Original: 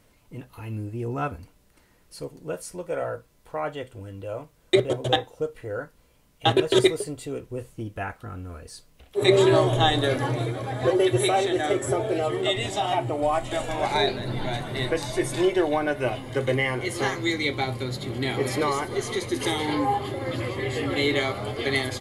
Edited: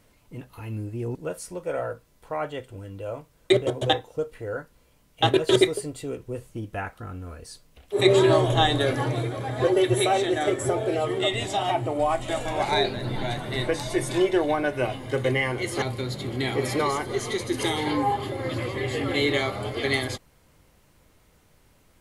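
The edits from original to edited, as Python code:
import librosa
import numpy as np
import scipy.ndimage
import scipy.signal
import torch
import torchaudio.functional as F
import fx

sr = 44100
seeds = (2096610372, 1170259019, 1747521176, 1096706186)

y = fx.edit(x, sr, fx.cut(start_s=1.15, length_s=1.23),
    fx.cut(start_s=17.05, length_s=0.59), tone=tone)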